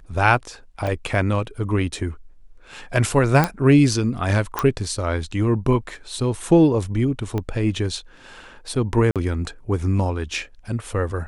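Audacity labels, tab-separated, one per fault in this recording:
0.870000	0.870000	gap 3.2 ms
3.440000	3.440000	pop -5 dBFS
4.590000	4.590000	pop -7 dBFS
7.380000	7.380000	pop -14 dBFS
9.110000	9.160000	gap 47 ms

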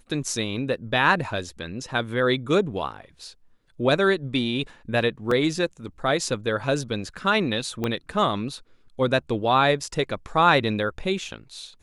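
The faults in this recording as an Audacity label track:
5.310000	5.310000	gap 3.7 ms
7.840000	7.840000	pop -13 dBFS

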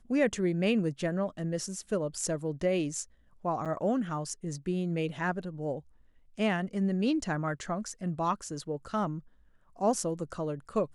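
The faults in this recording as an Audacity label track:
3.650000	3.660000	gap 7 ms

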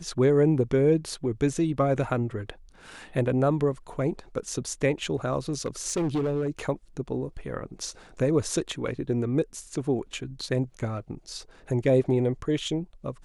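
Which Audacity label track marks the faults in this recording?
5.490000	6.590000	clipped -22.5 dBFS

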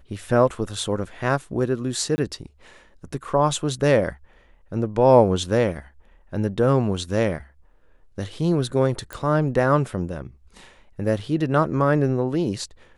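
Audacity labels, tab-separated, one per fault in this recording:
2.160000	2.180000	gap 20 ms
9.130000	9.130000	pop

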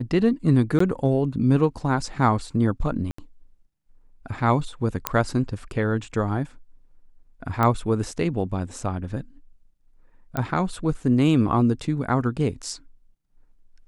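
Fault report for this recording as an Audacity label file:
0.790000	0.800000	gap 14 ms
3.110000	3.180000	gap 74 ms
5.070000	5.070000	pop -3 dBFS
7.630000	7.630000	pop -10 dBFS
10.370000	10.370000	pop -13 dBFS

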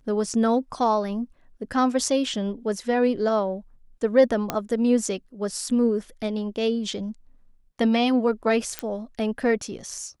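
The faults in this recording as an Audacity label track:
4.500000	4.500000	pop -9 dBFS
8.790000	8.790000	pop -11 dBFS

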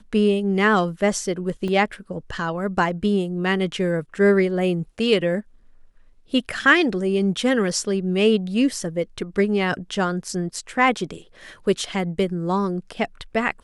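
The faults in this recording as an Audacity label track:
1.680000	1.680000	gap 2 ms

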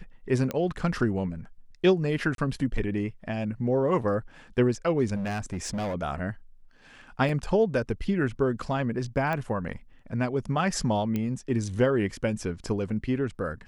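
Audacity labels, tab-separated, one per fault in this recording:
0.510000	0.510000	pop -16 dBFS
2.350000	2.380000	gap 32 ms
5.150000	5.950000	clipped -27.5 dBFS
7.290000	7.290000	gap 2.1 ms
9.330000	9.330000	pop -18 dBFS
11.160000	11.160000	pop -17 dBFS

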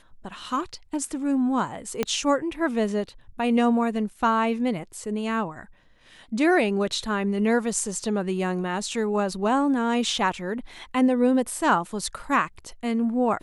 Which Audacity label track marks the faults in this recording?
2.030000	2.030000	pop -10 dBFS

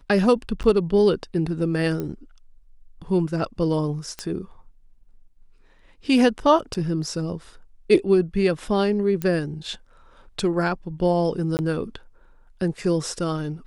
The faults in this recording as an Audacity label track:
0.630000	0.640000	gap 9.7 ms
2.000000	2.000000	pop -17 dBFS
4.190000	4.190000	pop -15 dBFS
6.740000	6.750000	gap 6.8 ms
9.220000	9.220000	pop -13 dBFS
11.570000	11.590000	gap 19 ms

